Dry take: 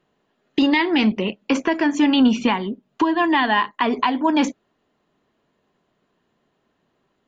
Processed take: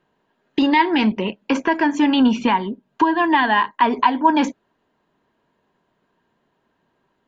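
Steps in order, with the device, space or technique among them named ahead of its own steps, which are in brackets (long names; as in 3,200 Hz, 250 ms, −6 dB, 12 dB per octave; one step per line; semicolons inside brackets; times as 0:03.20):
inside a helmet (high-shelf EQ 6,000 Hz −6 dB; hollow resonant body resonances 940/1,600 Hz, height 10 dB)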